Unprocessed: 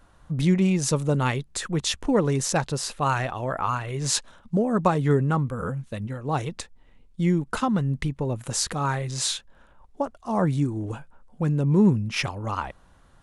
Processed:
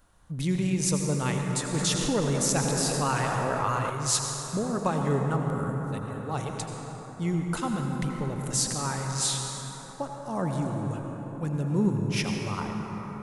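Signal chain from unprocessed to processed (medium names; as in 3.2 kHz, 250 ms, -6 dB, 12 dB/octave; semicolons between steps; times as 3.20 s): treble shelf 6.1 kHz +11.5 dB; reverberation RT60 5.1 s, pre-delay 72 ms, DRR 1.5 dB; 1.74–3.90 s: level flattener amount 50%; trim -7 dB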